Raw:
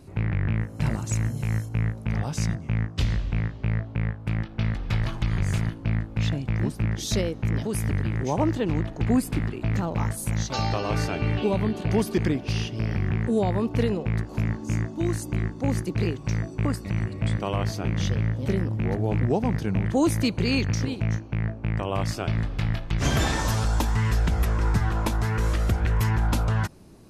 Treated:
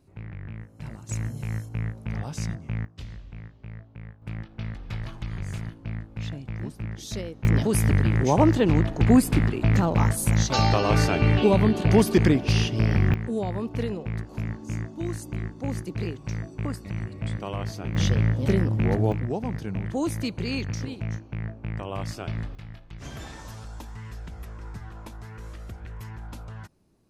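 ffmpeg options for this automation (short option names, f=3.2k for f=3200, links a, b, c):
-af "asetnsamples=n=441:p=0,asendcmd='1.09 volume volume -4.5dB;2.85 volume volume -15dB;4.22 volume volume -8dB;7.45 volume volume 5dB;13.14 volume volume -5dB;17.95 volume volume 3dB;19.12 volume volume -5.5dB;22.55 volume volume -16dB',volume=-13dB"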